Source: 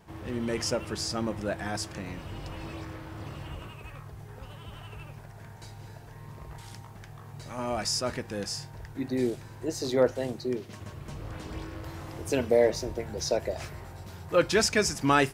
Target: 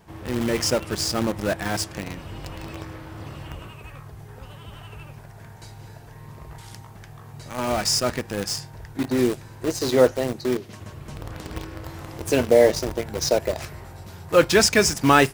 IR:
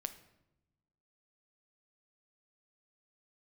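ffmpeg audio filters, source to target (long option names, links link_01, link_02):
-filter_complex "[0:a]highshelf=frequency=9800:gain=3,asplit=2[link_01][link_02];[link_02]acrusher=bits=4:mix=0:aa=0.000001,volume=-5dB[link_03];[link_01][link_03]amix=inputs=2:normalize=0,volume=3dB"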